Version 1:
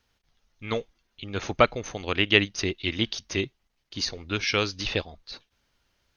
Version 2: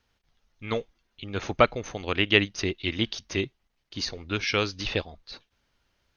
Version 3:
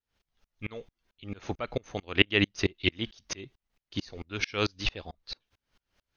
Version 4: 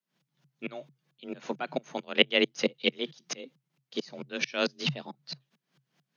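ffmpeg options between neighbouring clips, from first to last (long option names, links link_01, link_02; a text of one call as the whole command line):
ffmpeg -i in.wav -af "highshelf=frequency=5300:gain=-5.5" out.wav
ffmpeg -i in.wav -af "aeval=exprs='val(0)*pow(10,-33*if(lt(mod(-4.5*n/s,1),2*abs(-4.5)/1000),1-mod(-4.5*n/s,1)/(2*abs(-4.5)/1000),(mod(-4.5*n/s,1)-2*abs(-4.5)/1000)/(1-2*abs(-4.5)/1000))/20)':channel_layout=same,volume=6dB" out.wav
ffmpeg -i in.wav -af "afreqshift=130" out.wav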